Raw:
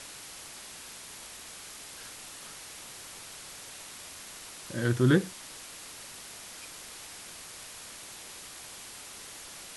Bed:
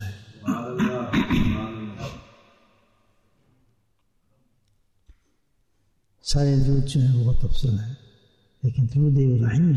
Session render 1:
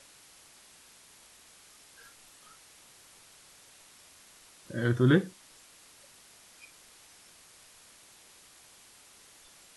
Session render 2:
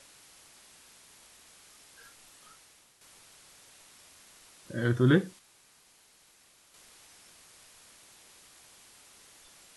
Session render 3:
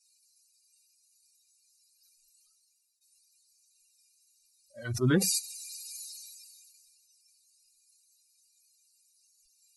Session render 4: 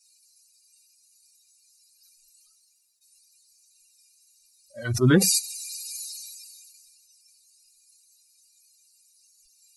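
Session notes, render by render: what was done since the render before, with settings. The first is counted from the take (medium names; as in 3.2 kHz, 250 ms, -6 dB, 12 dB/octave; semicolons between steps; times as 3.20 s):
noise print and reduce 11 dB
2.50–3.01 s: fade out, to -9 dB; 5.39–6.74 s: room tone
expander on every frequency bin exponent 3; decay stretcher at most 24 dB/s
trim +7 dB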